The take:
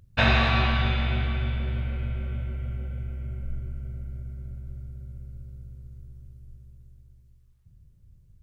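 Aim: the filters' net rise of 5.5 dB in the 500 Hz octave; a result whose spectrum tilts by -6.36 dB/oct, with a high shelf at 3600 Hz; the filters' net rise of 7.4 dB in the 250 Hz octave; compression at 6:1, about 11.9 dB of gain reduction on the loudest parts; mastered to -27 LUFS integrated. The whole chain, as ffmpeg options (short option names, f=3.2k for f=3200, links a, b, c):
-af "equalizer=f=250:t=o:g=7.5,equalizer=f=500:t=o:g=6,highshelf=f=3.6k:g=-8.5,acompressor=threshold=-27dB:ratio=6,volume=7.5dB"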